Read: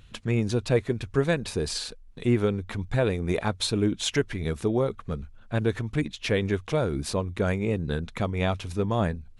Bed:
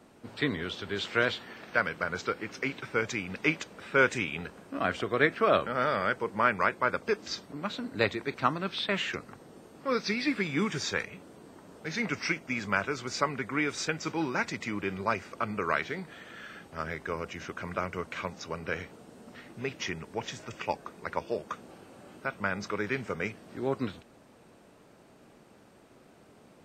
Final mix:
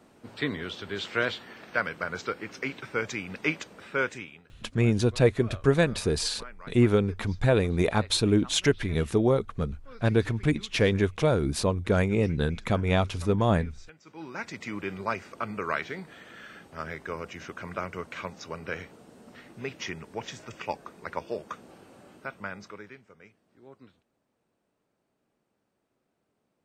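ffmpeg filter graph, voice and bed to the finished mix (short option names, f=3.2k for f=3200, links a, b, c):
-filter_complex "[0:a]adelay=4500,volume=2dB[a];[1:a]volume=19dB,afade=t=out:st=3.74:d=0.69:silence=0.1,afade=t=in:st=14.05:d=0.69:silence=0.105925,afade=t=out:st=21.95:d=1.06:silence=0.105925[b];[a][b]amix=inputs=2:normalize=0"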